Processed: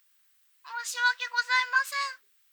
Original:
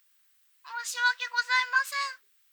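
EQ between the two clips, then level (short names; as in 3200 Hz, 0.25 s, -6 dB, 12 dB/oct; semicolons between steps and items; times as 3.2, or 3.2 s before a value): low shelf 470 Hz +3 dB; 0.0 dB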